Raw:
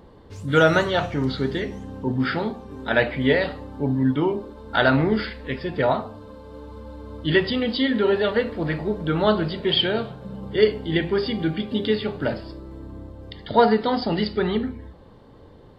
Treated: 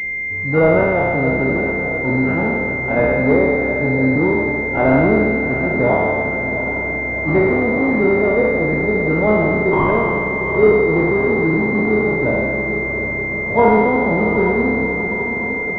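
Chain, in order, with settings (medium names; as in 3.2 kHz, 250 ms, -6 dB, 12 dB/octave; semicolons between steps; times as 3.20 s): spectral sustain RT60 2.08 s; echo that smears into a reverb 743 ms, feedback 65%, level -9.5 dB; class-D stage that switches slowly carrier 2.1 kHz; trim +2 dB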